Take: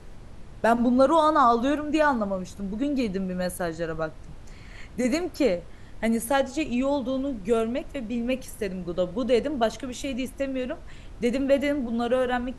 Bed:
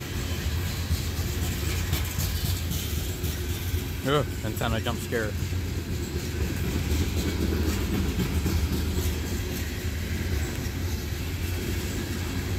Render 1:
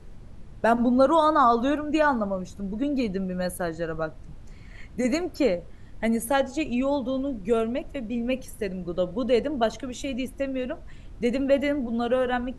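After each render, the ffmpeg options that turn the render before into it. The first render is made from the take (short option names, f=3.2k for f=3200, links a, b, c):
-af "afftdn=nr=6:nf=-44"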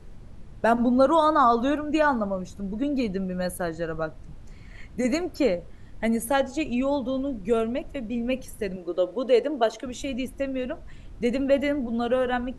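-filter_complex "[0:a]asettb=1/sr,asplit=3[a][b][c];[a]atrim=end=8.764[d];[b]atrim=start=8.76:end=9.86,asetpts=PTS-STARTPTS,afade=t=in:d=0.004:c=qsin,afade=t=out:st=1.096:d=0.004:c=qsin,lowshelf=f=230:t=q:w=1.5:g=-13[e];[c]atrim=start=9.856[f];[d][e]acrossfade=d=0.004:c1=hsin:c2=qsin[g];[g][f]acrossfade=d=0.004:c1=qsin:c2=hsin"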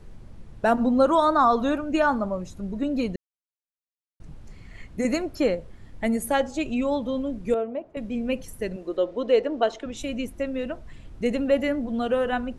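-filter_complex "[0:a]asettb=1/sr,asplit=3[a][b][c];[a]atrim=end=7.544[d];[b]atrim=start=7.54:end=7.97,asetpts=PTS-STARTPTS,afade=t=in:d=0.004:c=qsin,afade=t=out:st=0.426:d=0.004:c=qsin,bandpass=f=600:t=q:w=0.96[e];[c]atrim=start=7.966[f];[d][e]acrossfade=d=0.004:c1=hsin:c2=qsin[g];[g][f]acrossfade=d=0.004:c1=qsin:c2=hsin,asettb=1/sr,asplit=3[h][i][j];[h]atrim=end=8.974[k];[i]atrim=start=8.97:end=9.97,asetpts=PTS-STARTPTS,afade=t=in:d=0.004:c=qsin,afade=t=out:st=0.996:d=0.004:c=qsin,lowpass=5.6k[l];[j]atrim=start=9.966[m];[k][l]acrossfade=d=0.004:c1=hsin:c2=qsin[n];[n][m]acrossfade=d=0.004:c1=qsin:c2=hsin,asplit=3[o][p][q];[o]atrim=end=3.16,asetpts=PTS-STARTPTS,afade=t=out:st=3.156:d=0.004:c=hsin[r];[p]atrim=start=3.16:end=4.2,asetpts=PTS-STARTPTS,volume=0[s];[q]atrim=start=4.2,asetpts=PTS-STARTPTS,afade=t=in:d=0.004:c=hsin[t];[r][s][t]concat=n=3:v=0:a=1"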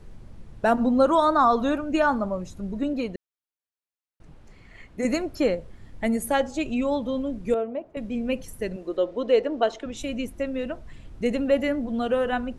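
-filter_complex "[0:a]asettb=1/sr,asplit=3[a][b][c];[a]atrim=end=2.934[d];[b]atrim=start=2.93:end=5.03,asetpts=PTS-STARTPTS,afade=t=in:d=0.004:c=qsin,afade=t=out:st=2.096:d=0.004:c=qsin,bass=f=250:g=-7,treble=f=4k:g=-5[e];[c]atrim=start=5.026[f];[d][e]acrossfade=d=0.004:c1=hsin:c2=qsin[g];[g][f]acrossfade=d=0.004:c1=qsin:c2=hsin"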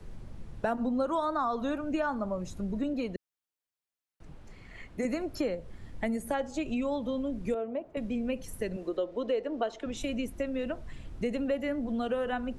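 -filter_complex "[0:a]acrossover=split=110|390|2400[a][b][c][d];[d]alimiter=level_in=9.5dB:limit=-24dB:level=0:latency=1,volume=-9.5dB[e];[a][b][c][e]amix=inputs=4:normalize=0,acompressor=threshold=-30dB:ratio=3"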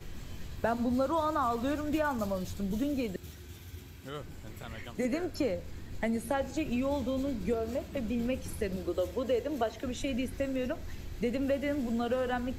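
-filter_complex "[1:a]volume=-17.5dB[a];[0:a][a]amix=inputs=2:normalize=0"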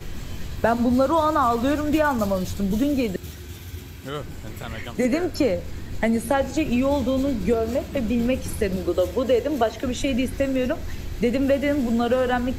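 -af "volume=10dB"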